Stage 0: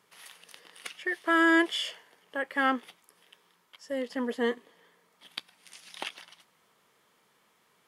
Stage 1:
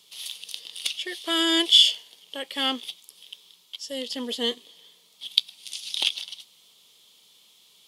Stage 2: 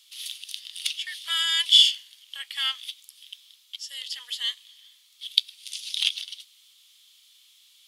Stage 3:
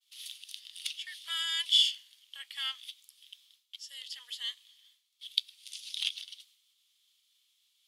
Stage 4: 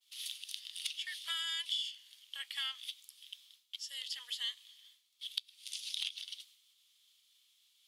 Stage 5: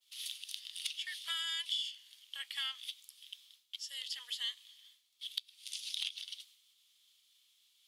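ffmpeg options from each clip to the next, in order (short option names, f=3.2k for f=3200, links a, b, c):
-af "highshelf=f=2.4k:t=q:w=3:g=13,volume=-1dB"
-af "highpass=f=1.4k:w=0.5412,highpass=f=1.4k:w=1.3066"
-af "agate=range=-33dB:threshold=-51dB:ratio=3:detection=peak,volume=-8.5dB"
-af "acompressor=threshold=-36dB:ratio=10,volume=2dB"
-af "asoftclip=type=hard:threshold=-21dB"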